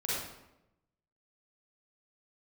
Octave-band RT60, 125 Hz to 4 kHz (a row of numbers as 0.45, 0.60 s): 1.2, 1.1, 1.0, 0.85, 0.75, 0.60 s